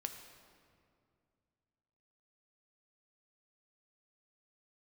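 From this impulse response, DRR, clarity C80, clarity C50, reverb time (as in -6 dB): 5.5 dB, 8.5 dB, 7.5 dB, 2.3 s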